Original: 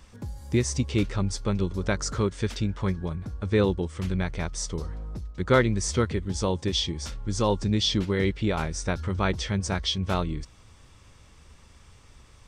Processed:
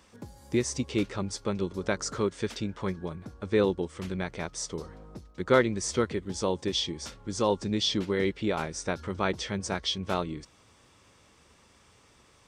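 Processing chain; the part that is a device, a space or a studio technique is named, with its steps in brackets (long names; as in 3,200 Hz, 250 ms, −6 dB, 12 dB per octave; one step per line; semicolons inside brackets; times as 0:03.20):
filter by subtraction (in parallel: low-pass filter 360 Hz 12 dB per octave + polarity inversion)
on the sum: level −2.5 dB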